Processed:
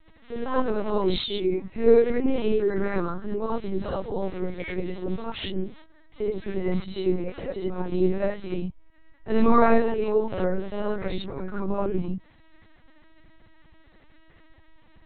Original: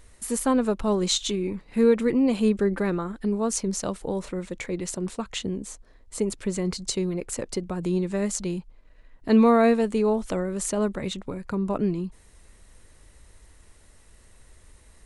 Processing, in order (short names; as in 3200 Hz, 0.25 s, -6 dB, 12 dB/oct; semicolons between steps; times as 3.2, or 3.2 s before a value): dynamic EQ 270 Hz, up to -6 dB, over -40 dBFS, Q 4.6; non-linear reverb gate 0.11 s rising, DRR -6.5 dB; LPC vocoder at 8 kHz pitch kept; gain -5.5 dB